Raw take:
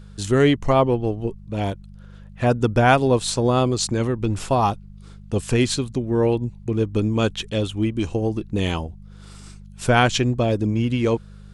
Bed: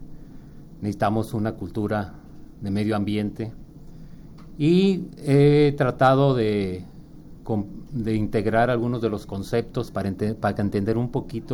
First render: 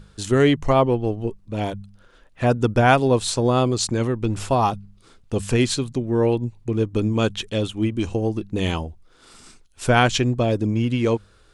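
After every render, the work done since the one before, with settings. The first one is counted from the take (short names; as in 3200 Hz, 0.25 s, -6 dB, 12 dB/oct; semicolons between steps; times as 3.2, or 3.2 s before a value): de-hum 50 Hz, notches 4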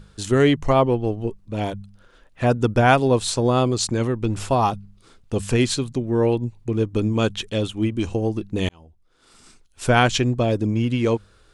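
8.69–9.84 fade in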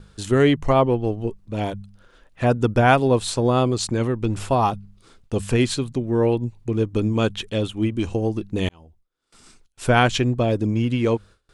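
gate with hold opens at -44 dBFS; dynamic EQ 6100 Hz, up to -4 dB, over -43 dBFS, Q 1.1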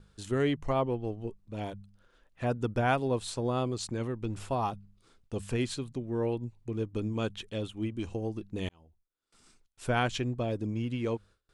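gain -11.5 dB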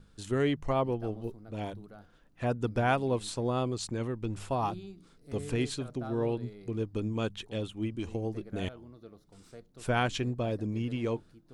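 add bed -26.5 dB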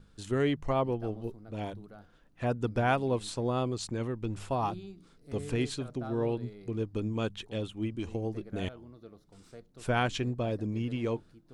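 high shelf 9300 Hz -4 dB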